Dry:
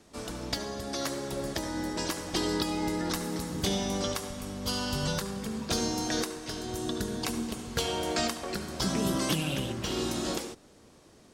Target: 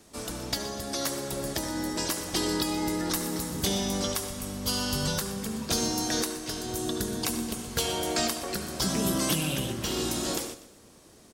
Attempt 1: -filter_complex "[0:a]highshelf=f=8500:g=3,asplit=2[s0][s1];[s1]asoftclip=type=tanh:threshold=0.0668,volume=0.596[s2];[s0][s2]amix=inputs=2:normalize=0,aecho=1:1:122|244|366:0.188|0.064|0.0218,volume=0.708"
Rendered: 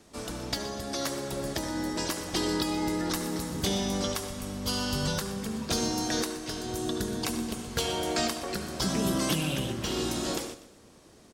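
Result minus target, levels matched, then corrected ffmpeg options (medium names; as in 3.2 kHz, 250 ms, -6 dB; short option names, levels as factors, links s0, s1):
8 kHz band -2.5 dB
-filter_complex "[0:a]highshelf=f=8500:g=12.5,asplit=2[s0][s1];[s1]asoftclip=type=tanh:threshold=0.0668,volume=0.596[s2];[s0][s2]amix=inputs=2:normalize=0,aecho=1:1:122|244|366:0.188|0.064|0.0218,volume=0.708"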